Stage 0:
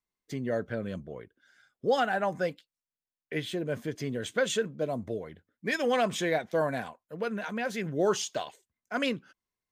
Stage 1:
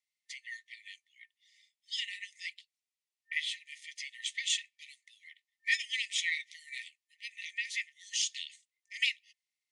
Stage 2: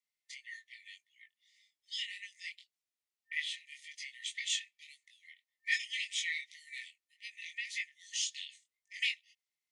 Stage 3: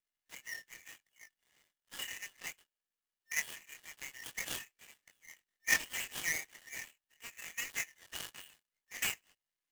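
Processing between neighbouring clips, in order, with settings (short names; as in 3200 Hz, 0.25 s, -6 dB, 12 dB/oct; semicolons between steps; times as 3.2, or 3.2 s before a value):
FFT band-pass 1800–11000 Hz; high shelf 8000 Hz -7 dB; gain +5 dB
chorus 1.8 Hz, delay 20 ms, depth 4.1 ms
switching dead time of 0.13 ms; small resonant body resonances 1700/2900 Hz, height 9 dB, ringing for 25 ms; gain +5.5 dB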